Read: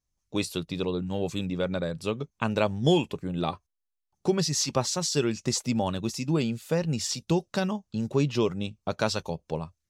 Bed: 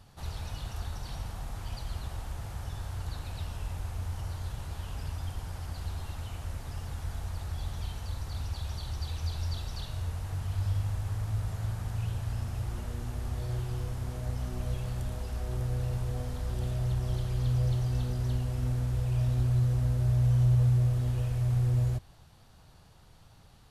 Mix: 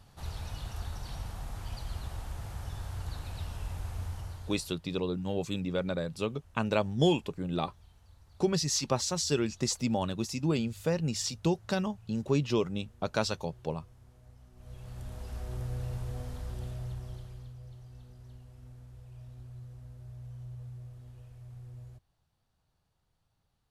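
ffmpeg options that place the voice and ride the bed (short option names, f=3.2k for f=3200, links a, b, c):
-filter_complex "[0:a]adelay=4150,volume=-3dB[a];[1:a]volume=16dB,afade=t=out:st=4.02:d=0.76:silence=0.0944061,afade=t=in:st=14.55:d=0.78:silence=0.133352,afade=t=out:st=16.34:d=1.2:silence=0.158489[b];[a][b]amix=inputs=2:normalize=0"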